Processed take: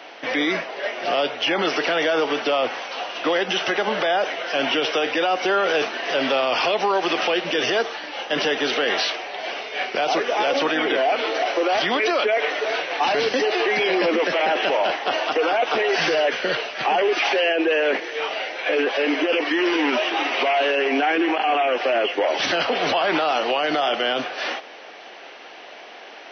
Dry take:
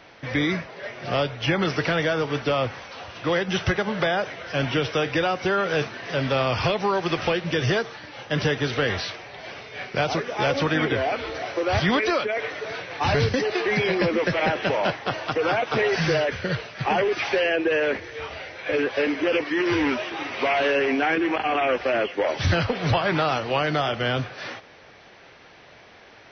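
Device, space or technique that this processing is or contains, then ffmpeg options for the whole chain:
laptop speaker: -af "highpass=f=270:w=0.5412,highpass=f=270:w=1.3066,equalizer=f=730:t=o:w=0.46:g=5.5,equalizer=f=2.9k:t=o:w=0.34:g=6,alimiter=limit=-19dB:level=0:latency=1:release=34,volume=6.5dB"

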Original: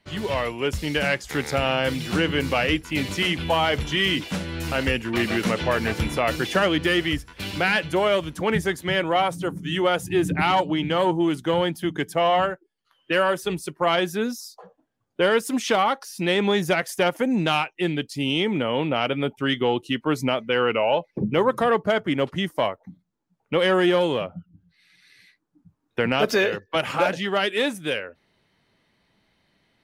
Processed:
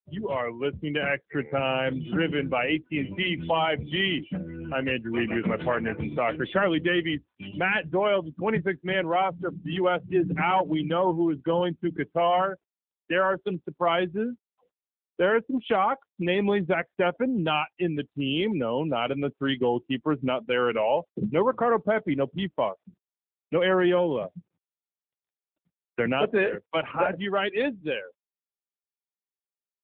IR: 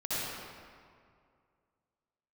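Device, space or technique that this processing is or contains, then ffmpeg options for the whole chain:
mobile call with aggressive noise cancelling: -filter_complex "[0:a]asplit=3[a][b][c];[a]afade=t=out:st=12.26:d=0.02[d];[b]bandreject=f=470:w=12,afade=t=in:st=12.26:d=0.02,afade=t=out:st=13.21:d=0.02[e];[c]afade=t=in:st=13.21:d=0.02[f];[d][e][f]amix=inputs=3:normalize=0,acrossover=split=4900[g][h];[h]acompressor=threshold=-48dB:ratio=4:attack=1:release=60[i];[g][i]amix=inputs=2:normalize=0,afftdn=nr=22:nf=-34,highpass=100,afftdn=nr=25:nf=-31,volume=-2dB" -ar 8000 -c:a libopencore_amrnb -b:a 7950

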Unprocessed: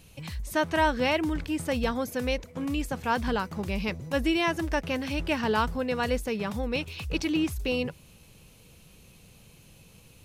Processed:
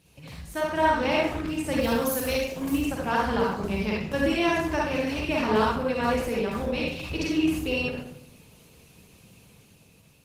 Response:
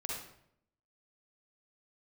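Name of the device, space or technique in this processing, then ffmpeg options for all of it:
far-field microphone of a smart speaker: -filter_complex "[0:a]asplit=3[a][b][c];[a]afade=t=out:st=1.78:d=0.02[d];[b]aemphasis=mode=production:type=50fm,afade=t=in:st=1.78:d=0.02,afade=t=out:st=2.72:d=0.02[e];[c]afade=t=in:st=2.72:d=0.02[f];[d][e][f]amix=inputs=3:normalize=0[g];[1:a]atrim=start_sample=2205[h];[g][h]afir=irnorm=-1:irlink=0,highpass=90,dynaudnorm=f=380:g=5:m=5dB,volume=-2.5dB" -ar 48000 -c:a libopus -b:a 16k

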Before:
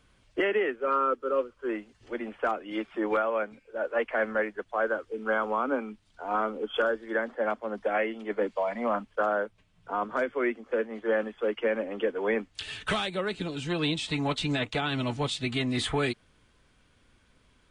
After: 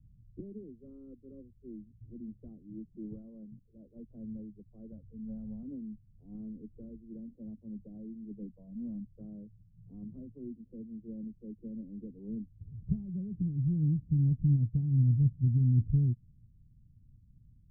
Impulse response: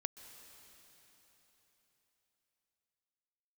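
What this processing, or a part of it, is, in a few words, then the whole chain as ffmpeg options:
the neighbour's flat through the wall: -filter_complex "[0:a]asettb=1/sr,asplit=3[a][b][c];[a]atrim=end=4.924[d];[b]atrim=start=4.92:end=5.63,asetpts=PTS-STARTPTS,afade=t=in:d=0.004:c=qsin,afade=t=out:st=0.706:d=0.004:c=qsin,aecho=1:1:1.4:0.99,atrim=end_sample=31311[e];[c]atrim=start=5.626[f];[d][e]acrossfade=d=0.004:c1=hsin:c2=qsin[g];[g][f]acrossfade=d=0.004:c1=qsin:c2=hsin,lowpass=f=180:w=0.5412,lowpass=f=180:w=1.3066,equalizer=f=120:t=o:w=0.76:g=7,volume=5dB"

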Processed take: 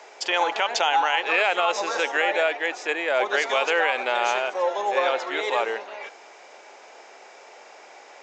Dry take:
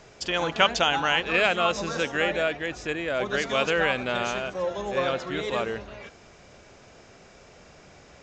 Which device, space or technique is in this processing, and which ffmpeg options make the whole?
laptop speaker: -af "highpass=f=380:w=0.5412,highpass=f=380:w=1.3066,equalizer=f=850:t=o:w=0.42:g=10,equalizer=f=2.1k:t=o:w=0.56:g=4.5,alimiter=limit=-14dB:level=0:latency=1:release=88,volume=3dB"

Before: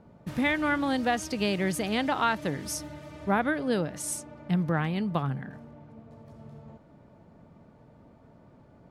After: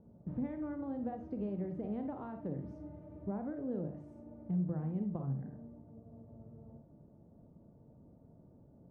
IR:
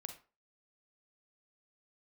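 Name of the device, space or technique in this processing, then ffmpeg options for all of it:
television next door: -filter_complex "[0:a]acompressor=threshold=-29dB:ratio=4,lowpass=490[a];[1:a]atrim=start_sample=2205[b];[a][b]afir=irnorm=-1:irlink=0"

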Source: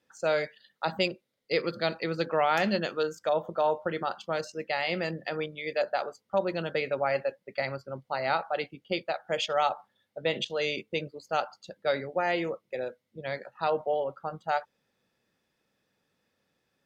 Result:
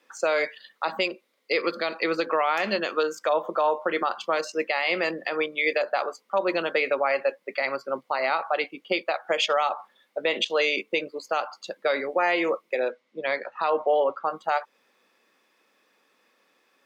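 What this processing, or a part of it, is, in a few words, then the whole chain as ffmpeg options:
laptop speaker: -filter_complex "[0:a]asettb=1/sr,asplit=3[a][b][c];[a]atrim=end=12.804[d];[b]atrim=start=12.8:end=14.26,asetpts=PTS-STARTPTS,afade=t=in:d=0.004:c=qsin,afade=t=out:st=1.456:d=0.004:c=qsin,lowpass=5.6k[e];[c]atrim=start=14.256[f];[d][e]acrossfade=d=0.004:c1=hsin:c2=qsin[g];[g][f]acrossfade=d=0.004:c1=qsin:c2=hsin,highpass=f=260:w=0.5412,highpass=f=260:w=1.3066,equalizer=f=1.1k:t=o:w=0.34:g=9,equalizer=f=2.3k:t=o:w=0.57:g=5.5,alimiter=limit=-22.5dB:level=0:latency=1:release=200,volume=9dB"

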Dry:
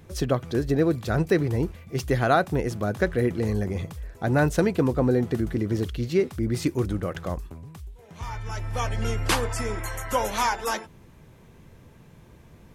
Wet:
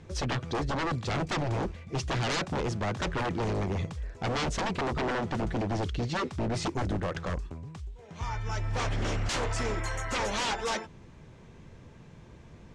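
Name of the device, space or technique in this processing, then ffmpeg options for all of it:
synthesiser wavefolder: -af "aeval=exprs='0.0596*(abs(mod(val(0)/0.0596+3,4)-2)-1)':c=same,lowpass=f=7.5k:w=0.5412,lowpass=f=7.5k:w=1.3066"

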